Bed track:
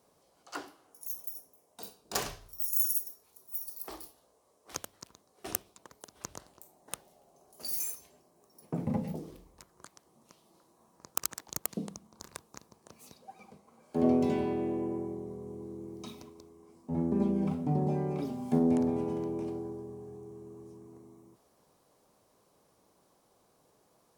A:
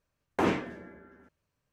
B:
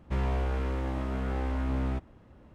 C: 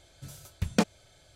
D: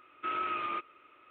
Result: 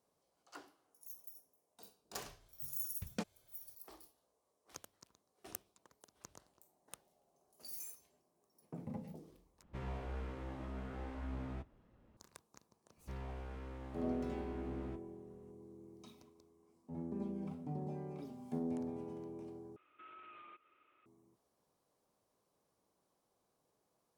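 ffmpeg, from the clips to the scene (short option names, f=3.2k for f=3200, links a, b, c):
-filter_complex "[2:a]asplit=2[a][b];[0:a]volume=-13dB[c];[a]flanger=delay=4:depth=5.9:regen=-48:speed=1.8:shape=triangular[d];[b]asplit=2[e][f];[f]adelay=38,volume=-14dB[g];[e][g]amix=inputs=2:normalize=0[h];[4:a]alimiter=level_in=12dB:limit=-24dB:level=0:latency=1:release=150,volume=-12dB[i];[c]asplit=3[j][k][l];[j]atrim=end=9.634[m];[d]atrim=end=2.54,asetpts=PTS-STARTPTS,volume=-8.5dB[n];[k]atrim=start=12.166:end=19.764[o];[i]atrim=end=1.3,asetpts=PTS-STARTPTS,volume=-12.5dB[p];[l]atrim=start=21.056[q];[3:a]atrim=end=1.35,asetpts=PTS-STARTPTS,volume=-16.5dB,afade=t=in:d=0.004:c=hsin,afade=t=out:st=1.346:d=0.004:c=hsin,adelay=2400[r];[h]atrim=end=2.54,asetpts=PTS-STARTPTS,volume=-16dB,afade=t=in:d=0.004:c=hsin,afade=t=out:st=2.536:d=0.004:c=hsin,adelay=12970[s];[m][n]acrossfade=d=0.004:c1=hsin:c2=hsin[t];[t][o]acrossfade=d=0.004:c1=hsin:c2=hsin[u];[u][p]acrossfade=d=0.004:c1=hsin:c2=hsin[v];[v][q]acrossfade=d=0.004:c1=hsin:c2=hsin[w];[w][r][s]amix=inputs=3:normalize=0"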